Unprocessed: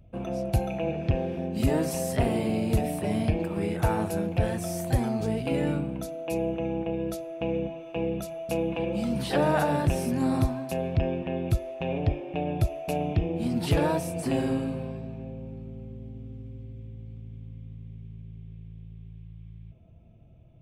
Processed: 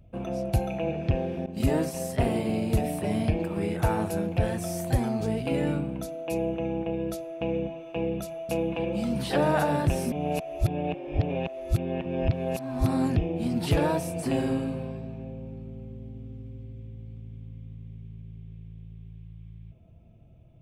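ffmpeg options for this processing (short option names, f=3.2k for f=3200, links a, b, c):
-filter_complex "[0:a]asettb=1/sr,asplit=3[a][b][c];[a]atrim=end=1.464[d];[b]atrim=start=1.46:end=2.78,asetpts=PTS-STARTPTS,afade=t=in:d=0.004:c=qsin,afade=t=out:st=1.316:d=0.004:c=qsin,agate=range=-33dB:threshold=-27dB:ratio=3:release=100:detection=peak[e];[c]atrim=start=2.776[f];[d][e]acrossfade=d=0.004:c1=hsin:c2=qsin[g];[g][f]acrossfade=d=0.004:c1=qsin:c2=hsin,asplit=3[h][i][j];[h]atrim=end=10.122[k];[i]atrim=start=10.118:end=13.162,asetpts=PTS-STARTPTS,areverse[l];[j]atrim=start=13.158[m];[k][l]acrossfade=d=0.004:c1=hsin:c2=hsin[n];[n][m]acrossfade=d=0.004:c1=hsin:c2=hsin"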